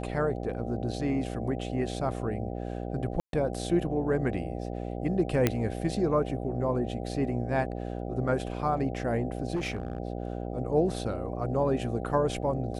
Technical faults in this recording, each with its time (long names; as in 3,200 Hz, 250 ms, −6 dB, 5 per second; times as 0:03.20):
mains buzz 60 Hz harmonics 13 −35 dBFS
0:03.20–0:03.33: drop-out 132 ms
0:05.47: click −9 dBFS
0:09.55–0:09.98: clipping −27 dBFS